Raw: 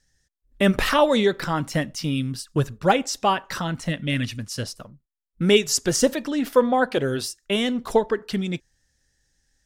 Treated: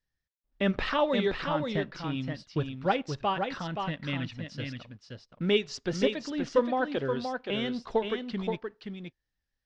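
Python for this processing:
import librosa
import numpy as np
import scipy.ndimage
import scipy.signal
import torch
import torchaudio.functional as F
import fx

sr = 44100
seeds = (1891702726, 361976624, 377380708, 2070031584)

p1 = fx.law_mismatch(x, sr, coded='A')
p2 = scipy.signal.sosfilt(scipy.signal.butter(4, 4500.0, 'lowpass', fs=sr, output='sos'), p1)
p3 = p2 + fx.echo_single(p2, sr, ms=524, db=-5.5, dry=0)
y = p3 * 10.0 ** (-8.0 / 20.0)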